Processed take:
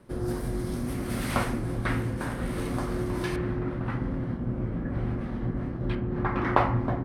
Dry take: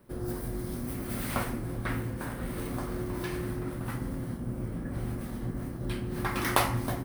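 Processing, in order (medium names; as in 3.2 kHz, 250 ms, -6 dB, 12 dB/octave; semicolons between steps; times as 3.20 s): low-pass 8.8 kHz 12 dB/octave, from 3.36 s 2.6 kHz, from 5.95 s 1.5 kHz; trim +4.5 dB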